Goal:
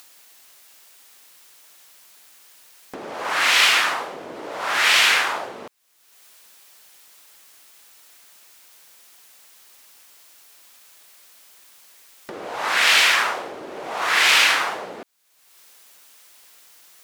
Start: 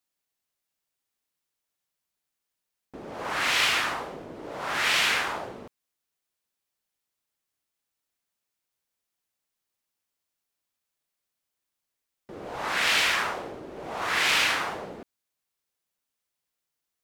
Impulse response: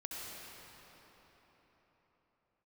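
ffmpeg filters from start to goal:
-af "highpass=f=660:p=1,acompressor=mode=upward:threshold=-37dB:ratio=2.5,volume=8dB"

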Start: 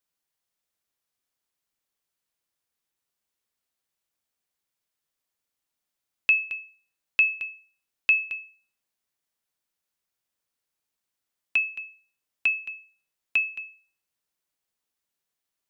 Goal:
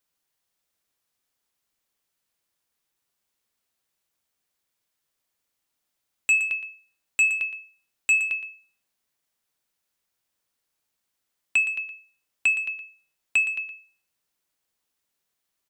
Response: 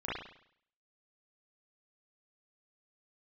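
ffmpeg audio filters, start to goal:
-filter_complex "[0:a]aeval=exprs='0.282*sin(PI/2*1.78*val(0)/0.282)':c=same,asplit=2[a][b];[b]aecho=0:1:117:0.251[c];[a][c]amix=inputs=2:normalize=0,volume=-4.5dB"

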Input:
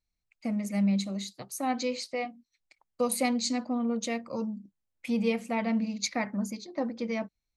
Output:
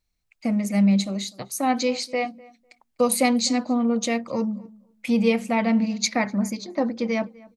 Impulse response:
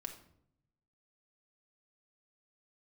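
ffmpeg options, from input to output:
-filter_complex "[0:a]asplit=2[a][b];[b]adelay=250,lowpass=f=1.9k:p=1,volume=-22dB,asplit=2[c][d];[d]adelay=250,lowpass=f=1.9k:p=1,volume=0.16[e];[a][c][e]amix=inputs=3:normalize=0,volume=7.5dB"

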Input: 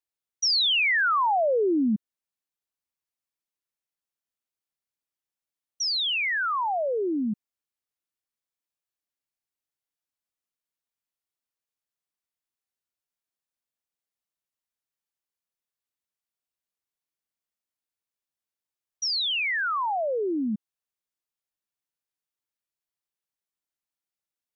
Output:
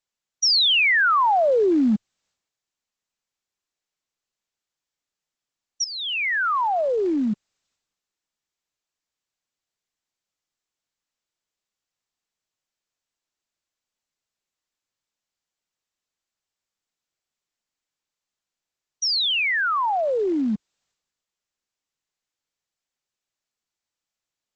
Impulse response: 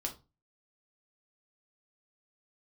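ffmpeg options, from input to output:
-filter_complex "[0:a]asettb=1/sr,asplit=3[a][b][c];[a]atrim=end=5.844[d];[b]atrim=start=5.84:end=6.47,asetpts=PTS-STARTPTS,afade=t=in:d=0.004:c=qsin,afade=t=out:st=0.626:d=0.004:c=qsin,highpass=150,lowpass=2.5k[e];[c]atrim=start=6.466[f];[d][e]acrossfade=d=0.004:c1=hsin:c2=qsin[g];[g][f]acrossfade=d=0.004:c1=qsin:c2=hsin,volume=4.5dB" -ar 48000 -c:a libopus -b:a 12k

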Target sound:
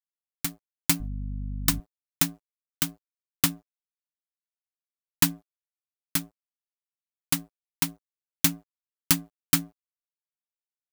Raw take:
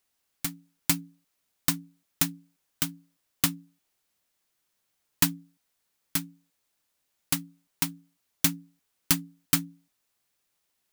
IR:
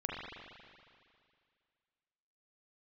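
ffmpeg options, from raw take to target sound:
-filter_complex "[0:a]aeval=exprs='sgn(val(0))*max(abs(val(0))-0.00355,0)':c=same,asettb=1/sr,asplit=3[a][b][c];[a]atrim=end=1.004[d];[b]atrim=start=1:end=1.8,asetpts=PTS-STARTPTS,afade=t=in:d=0.004:c=qsin,afade=t=out:st=0.796:d=0.004:c=qsin,aeval=exprs='val(0)+0.0224*(sin(2*PI*50*n/s)+sin(2*PI*2*50*n/s)/2+sin(2*PI*3*50*n/s)/3+sin(2*PI*4*50*n/s)/4+sin(2*PI*5*50*n/s)/5)':c=same[e];[c]atrim=start=1.796[f];[d][e]acrossfade=d=0.004:c1=hsin:c2=qsin[g];[g][f]acrossfade=d=0.004:c1=qsin:c2=hsin,volume=2dB"

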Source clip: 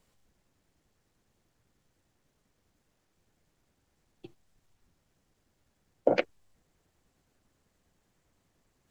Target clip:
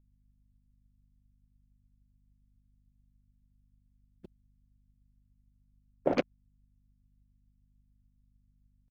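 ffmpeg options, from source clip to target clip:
-filter_complex "[0:a]aemphasis=mode=production:type=75fm,acrossover=split=710[a][b];[a]aeval=exprs='val(0)*(1-0.7/2+0.7/2*cos(2*PI*5*n/s))':c=same[c];[b]aeval=exprs='val(0)*(1-0.7/2-0.7/2*cos(2*PI*5*n/s))':c=same[d];[c][d]amix=inputs=2:normalize=0,equalizer=f=180:t=o:w=0.36:g=7,asplit=2[e][f];[f]acompressor=threshold=-40dB:ratio=6,volume=1dB[g];[e][g]amix=inputs=2:normalize=0,aeval=exprs='sgn(val(0))*max(abs(val(0))-0.00944,0)':c=same,afwtdn=0.00282,aeval=exprs='val(0)+0.000398*(sin(2*PI*50*n/s)+sin(2*PI*2*50*n/s)/2+sin(2*PI*3*50*n/s)/3+sin(2*PI*4*50*n/s)/4+sin(2*PI*5*50*n/s)/5)':c=same,asplit=3[h][i][j];[i]asetrate=22050,aresample=44100,atempo=2,volume=-4dB[k];[j]asetrate=33038,aresample=44100,atempo=1.33484,volume=-10dB[l];[h][k][l]amix=inputs=3:normalize=0"

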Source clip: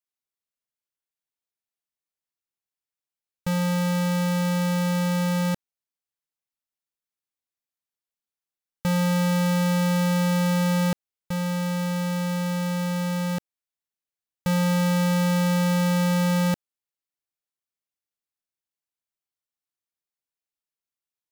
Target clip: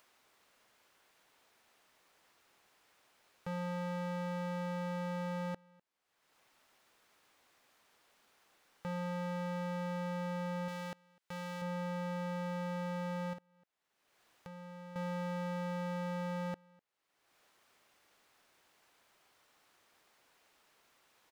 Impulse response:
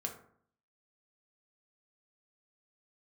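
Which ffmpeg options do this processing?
-filter_complex "[0:a]asoftclip=type=tanh:threshold=-31.5dB,acompressor=mode=upward:threshold=-38dB:ratio=2.5,asplit=2[a][b];[b]adelay=250.7,volume=-28dB,highshelf=f=4k:g=-5.64[c];[a][c]amix=inputs=2:normalize=0,asplit=2[d][e];[e]highpass=f=720:p=1,volume=15dB,asoftclip=type=tanh:threshold=-17dB[f];[d][f]amix=inputs=2:normalize=0,lowpass=f=1.1k:p=1,volume=-6dB,asettb=1/sr,asplit=3[g][h][i];[g]atrim=end=10.684[j];[h]atrim=start=10.68:end=11.62,asetpts=PTS-STARTPTS,afade=t=in:d=0.004:c=qsin,afade=t=out:st=0.936:d=0.004:c=qsin,tiltshelf=f=1.5k:g=-5.5[k];[i]atrim=start=11.616[l];[j][k]acrossfade=d=0.004:c1=hsin:c2=qsin[m];[m][l]acrossfade=d=0.004:c1=qsin:c2=hsin,asettb=1/sr,asplit=3[n][o][p];[n]atrim=end=13.334[q];[o]atrim=start=13.33:end=14.96,asetpts=PTS-STARTPTS,afade=t=in:d=0.004:c=qsin,afade=t=out:st=1.626:d=0.004:c=qsin,acompressor=threshold=-50dB:ratio=2[r];[p]atrim=start=14.956[s];[q][r]acrossfade=d=0.004:c1=hsin:c2=qsin[t];[t][s]acrossfade=d=0.004:c1=qsin:c2=hsin,volume=-5.5dB"

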